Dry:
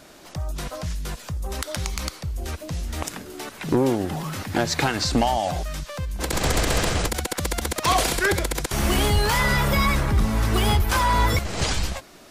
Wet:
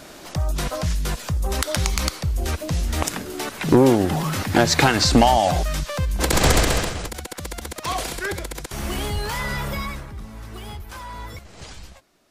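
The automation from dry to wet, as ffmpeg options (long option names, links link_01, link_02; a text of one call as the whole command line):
ffmpeg -i in.wav -af "volume=6dB,afade=type=out:start_time=6.49:duration=0.45:silence=0.251189,afade=type=out:start_time=9.67:duration=0.44:silence=0.334965" out.wav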